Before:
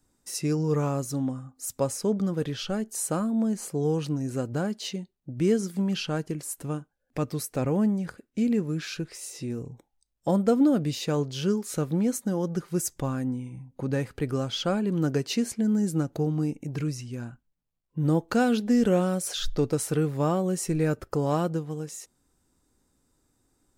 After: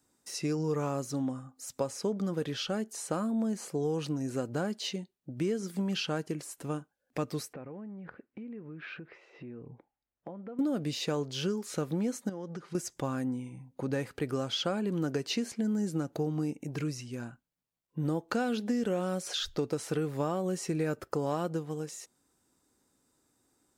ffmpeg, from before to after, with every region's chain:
-filter_complex "[0:a]asettb=1/sr,asplit=3[a][b][c];[a]atrim=end=7.534[d];[b]atrim=start=7.53:end=10.59,asetpts=PTS-STARTPTS,afade=t=in:d=0.004:c=qsin,afade=t=out:st=3.056:d=0.004:c=qsin,lowpass=f=2.4k:w=0.5412,lowpass=f=2.4k:w=1.3066,acompressor=threshold=-37dB:ratio=12:attack=3.2:release=140:knee=1:detection=peak[e];[c]atrim=start=10.586[f];[d][e]acrossfade=d=0.004:c1=hsin:c2=qsin[g];[g][f]acrossfade=d=0.004:c1=qsin:c2=hsin,asettb=1/sr,asplit=3[h][i][j];[h]atrim=end=12.294[k];[i]atrim=start=12.29:end=12.75,asetpts=PTS-STARTPTS,afade=t=in:d=0.004:c=qsin,afade=t=out:st=0.456:d=0.004:c=qsin,lowpass=5.8k,acompressor=threshold=-33dB:ratio=6:attack=3.2:release=140:knee=1:detection=peak[l];[j]atrim=start=12.746[m];[k][l]acrossfade=d=0.004:c1=hsin:c2=qsin[n];[n][m]acrossfade=d=0.004:c1=qsin:c2=hsin,acrossover=split=6100[o][p];[p]acompressor=threshold=-47dB:ratio=4:attack=1:release=60[q];[o][q]amix=inputs=2:normalize=0,highpass=f=230:p=1,acompressor=threshold=-27dB:ratio=6"

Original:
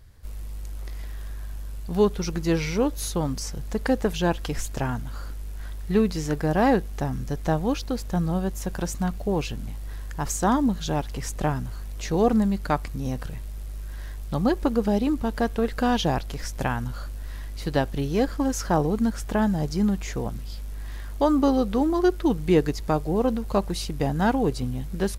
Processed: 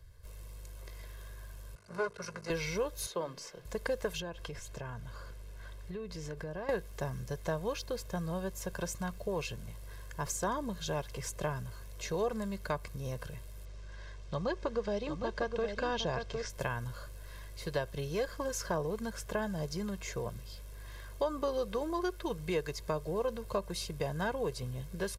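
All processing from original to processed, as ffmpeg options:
-filter_complex "[0:a]asettb=1/sr,asplit=3[a][b][c];[a]atrim=end=1.754[d];[b]atrim=start=1.75:end=2.5,asetpts=PTS-STARTPTS,afade=t=in:d=0.004:c=qsin,afade=t=out:st=0.746:d=0.004:c=qsin,aecho=1:1:4.9:0.42,atrim=end_sample=33075,aeval=exprs='max(val(0),0)':c=same,highpass=200,equalizer=f=300:t=q:w=4:g=-9,equalizer=f=530:t=q:w=4:g=-4,equalizer=f=1.4k:t=q:w=4:g=9,equalizer=f=3.4k:t=q:w=4:g=-10,equalizer=f=7.3k:t=q:w=4:g=-4,lowpass=f=9.6k:w=0.5412,lowpass=f=9.6k:w=1.3066[e];[c]atrim=start=2.496[f];[d][e]acrossfade=d=0.004:c1=hsin:c2=qsin[g];[g][f]acrossfade=d=0.004:c1=qsin:c2=hsin,asettb=1/sr,asplit=3[h][i][j];[h]atrim=end=3.064[k];[i]atrim=start=3.06:end=3.65,asetpts=PTS-STARTPTS,afade=t=in:d=0.004:c=qsin,afade=t=out:st=0.586:d=0.004:c=qsin,acrossover=split=220 4900:gain=0.126 1 0.224[l][m][n];[l][m][n]amix=inputs=3:normalize=0,bandreject=f=50:t=h:w=6,bandreject=f=100:t=h:w=6,bandreject=f=150:t=h:w=6,bandreject=f=200:t=h:w=6,bandreject=f=250:t=h:w=6,bandreject=f=300:t=h:w=6,bandreject=f=350:t=h:w=6[o];[j]atrim=start=3.646[p];[k][o]acrossfade=d=0.004:c1=hsin:c2=qsin[q];[q][p]acrossfade=d=0.004:c1=qsin:c2=hsin,asettb=1/sr,asplit=3[r][s][t];[r]atrim=end=4.204[u];[s]atrim=start=4.2:end=6.69,asetpts=PTS-STARTPTS,afade=t=in:d=0.004:c=qsin,afade=t=out:st=2.486:d=0.004:c=qsin,highshelf=f=8.2k:g=-10,acompressor=threshold=-29dB:ratio=8:attack=3.2:release=140:knee=1:detection=peak[v];[t]atrim=start=6.686[w];[u][v]acrossfade=d=0.004:c1=hsin:c2=qsin[x];[x][w]acrossfade=d=0.004:c1=qsin:c2=hsin,asettb=1/sr,asplit=3[y][z][aa];[y]atrim=end=13.654[ab];[z]atrim=start=13.65:end=16.5,asetpts=PTS-STARTPTS,afade=t=in:d=0.004:c=qsin,afade=t=out:st=2.846:d=0.004:c=qsin,lowpass=f=6.7k:w=0.5412,lowpass=f=6.7k:w=1.3066,aecho=1:1:760:0.398,atrim=end_sample=125685[ac];[aa]atrim=start=16.496[ad];[ab][ac]acrossfade=d=0.004:c1=hsin:c2=qsin[ae];[ae][ad]acrossfade=d=0.004:c1=qsin:c2=hsin,aecho=1:1:1.9:0.74,acrossover=split=91|600[af][ag][ah];[af]acompressor=threshold=-43dB:ratio=4[ai];[ag]acompressor=threshold=-28dB:ratio=4[aj];[ah]acompressor=threshold=-26dB:ratio=4[ak];[ai][aj][ak]amix=inputs=3:normalize=0,volume=-7.5dB"

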